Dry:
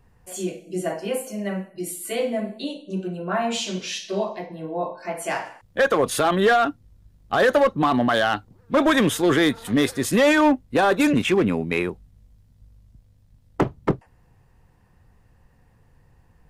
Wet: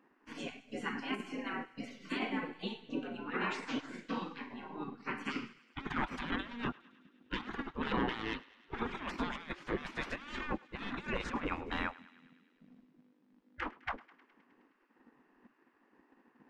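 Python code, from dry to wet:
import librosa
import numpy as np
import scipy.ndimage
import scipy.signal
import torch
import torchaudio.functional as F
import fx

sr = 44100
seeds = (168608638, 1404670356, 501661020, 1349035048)

p1 = fx.spec_gate(x, sr, threshold_db=-20, keep='weak')
p2 = fx.graphic_eq_15(p1, sr, hz=(100, 250, 630, 4000), db=(-9, 10, -10, -3))
p3 = fx.over_compress(p2, sr, threshold_db=-38.0, ratio=-0.5)
p4 = fx.leveller(p3, sr, passes=1)
p5 = fx.spacing_loss(p4, sr, db_at_10k=37)
p6 = p5 + fx.echo_thinned(p5, sr, ms=104, feedback_pct=73, hz=860.0, wet_db=-19.5, dry=0)
y = F.gain(torch.from_numpy(p6), 3.5).numpy()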